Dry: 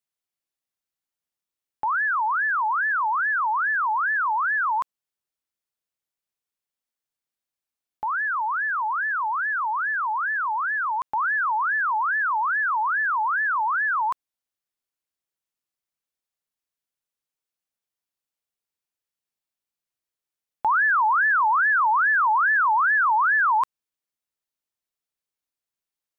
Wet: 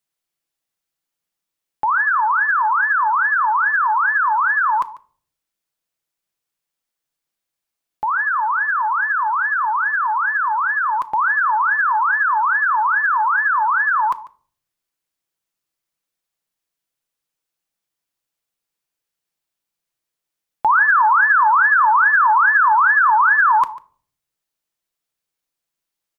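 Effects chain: delay 145 ms -19 dB; on a send at -10.5 dB: reverberation RT60 0.50 s, pre-delay 6 ms; on the sum: trim +6 dB

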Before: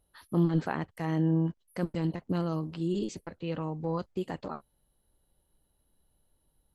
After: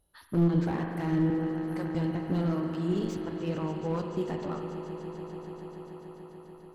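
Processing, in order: 1.30–1.87 s: high-pass 720 Hz 6 dB/octave; on a send: echo with a slow build-up 145 ms, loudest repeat 5, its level -17 dB; on the sum: spring tank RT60 2.3 s, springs 41 ms, chirp 55 ms, DRR 5 dB; slew-rate limiter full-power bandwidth 27 Hz

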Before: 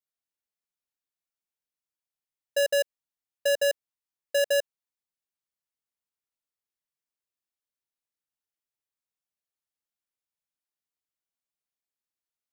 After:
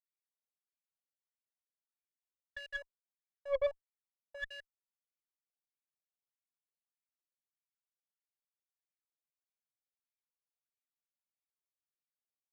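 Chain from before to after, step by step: wah-wah 1.6 Hz 510–2400 Hz, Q 12; Chebyshev shaper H 6 -19 dB, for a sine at -20 dBFS; saturation -21.5 dBFS, distortion -19 dB; trim -1 dB

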